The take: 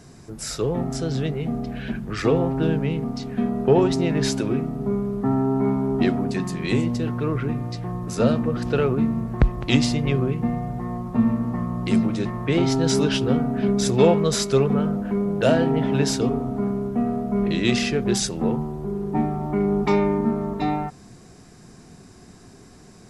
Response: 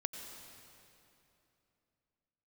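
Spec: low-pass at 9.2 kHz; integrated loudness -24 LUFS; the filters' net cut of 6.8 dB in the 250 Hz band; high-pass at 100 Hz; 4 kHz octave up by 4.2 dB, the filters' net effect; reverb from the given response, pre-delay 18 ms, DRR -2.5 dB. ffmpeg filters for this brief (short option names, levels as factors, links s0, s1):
-filter_complex "[0:a]highpass=100,lowpass=9200,equalizer=f=250:t=o:g=-8.5,equalizer=f=4000:t=o:g=5.5,asplit=2[s0][s1];[1:a]atrim=start_sample=2205,adelay=18[s2];[s1][s2]afir=irnorm=-1:irlink=0,volume=1.33[s3];[s0][s3]amix=inputs=2:normalize=0,volume=0.75"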